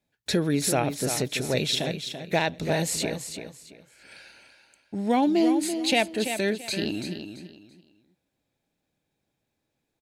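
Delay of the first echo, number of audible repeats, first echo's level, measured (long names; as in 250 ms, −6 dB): 336 ms, 3, −8.5 dB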